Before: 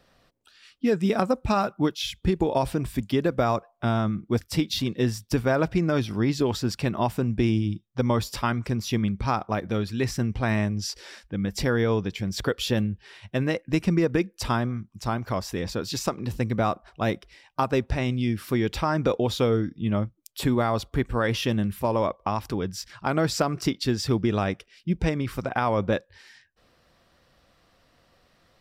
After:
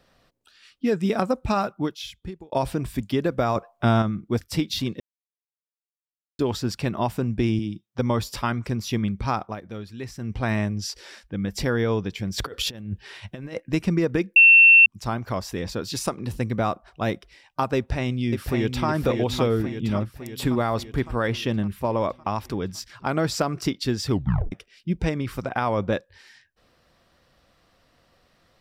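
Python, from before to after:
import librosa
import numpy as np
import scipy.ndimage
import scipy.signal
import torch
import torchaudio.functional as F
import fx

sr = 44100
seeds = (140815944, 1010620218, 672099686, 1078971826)

y = fx.highpass(x, sr, hz=150.0, slope=12, at=(7.59, 7.99))
y = fx.over_compress(y, sr, threshold_db=-30.0, ratio=-0.5, at=(12.38, 13.6))
y = fx.peak_eq(y, sr, hz=9700.0, db=fx.line((15.95, 13.0), (16.46, 4.5)), octaves=0.28, at=(15.95, 16.46), fade=0.02)
y = fx.echo_throw(y, sr, start_s=17.76, length_s=1.11, ms=560, feedback_pct=60, wet_db=-5.0)
y = fx.high_shelf(y, sr, hz=5500.0, db=-7.0, at=(21.28, 22.01))
y = fx.edit(y, sr, fx.fade_out_span(start_s=1.59, length_s=0.93),
    fx.clip_gain(start_s=3.56, length_s=0.46, db=5.0),
    fx.silence(start_s=5.0, length_s=1.39),
    fx.fade_down_up(start_s=9.43, length_s=0.91, db=-9.0, fade_s=0.13),
    fx.bleep(start_s=14.36, length_s=0.5, hz=2700.0, db=-8.5),
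    fx.tape_stop(start_s=24.11, length_s=0.41), tone=tone)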